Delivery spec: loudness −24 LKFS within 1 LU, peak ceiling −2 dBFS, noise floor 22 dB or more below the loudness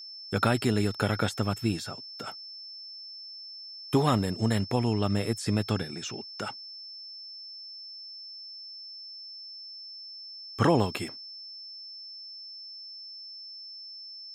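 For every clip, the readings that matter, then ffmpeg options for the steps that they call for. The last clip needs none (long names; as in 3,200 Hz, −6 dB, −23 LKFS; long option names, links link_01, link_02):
interfering tone 5,300 Hz; level of the tone −41 dBFS; integrated loudness −32.0 LKFS; sample peak −10.5 dBFS; target loudness −24.0 LKFS
→ -af "bandreject=frequency=5300:width=30"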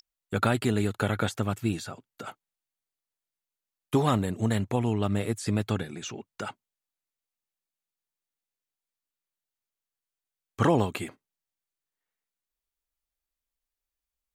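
interfering tone none found; integrated loudness −28.0 LKFS; sample peak −10.5 dBFS; target loudness −24.0 LKFS
→ -af "volume=4dB"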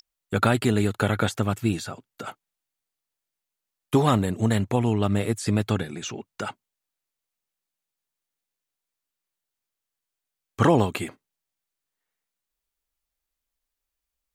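integrated loudness −24.0 LKFS; sample peak −6.5 dBFS; background noise floor −86 dBFS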